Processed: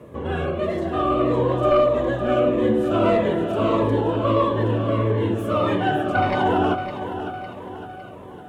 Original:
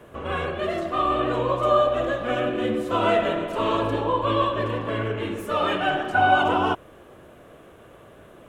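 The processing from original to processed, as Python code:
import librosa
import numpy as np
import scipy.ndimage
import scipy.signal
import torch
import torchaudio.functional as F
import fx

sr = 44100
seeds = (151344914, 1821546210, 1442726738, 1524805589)

p1 = scipy.signal.sosfilt(scipy.signal.butter(2, 72.0, 'highpass', fs=sr, output='sos'), x)
p2 = fx.tilt_shelf(p1, sr, db=5.5, hz=1100.0)
p3 = fx.fold_sine(p2, sr, drive_db=3, ceiling_db=-5.5)
p4 = p3 + fx.echo_feedback(p3, sr, ms=557, feedback_pct=50, wet_db=-9.5, dry=0)
p5 = fx.notch_cascade(p4, sr, direction='falling', hz=1.6)
y = p5 * librosa.db_to_amplitude(-4.5)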